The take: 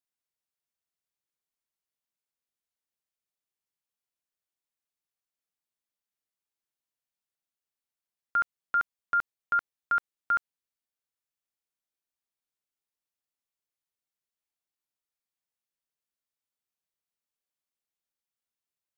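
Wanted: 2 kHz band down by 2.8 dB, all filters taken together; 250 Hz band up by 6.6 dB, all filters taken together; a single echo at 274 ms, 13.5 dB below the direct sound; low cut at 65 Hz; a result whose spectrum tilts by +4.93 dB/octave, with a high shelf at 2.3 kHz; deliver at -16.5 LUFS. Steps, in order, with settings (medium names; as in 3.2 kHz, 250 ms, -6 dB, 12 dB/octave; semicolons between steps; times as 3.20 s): high-pass 65 Hz; peaking EQ 250 Hz +8.5 dB; peaking EQ 2 kHz -9 dB; treble shelf 2.3 kHz +5.5 dB; delay 274 ms -13.5 dB; trim +16.5 dB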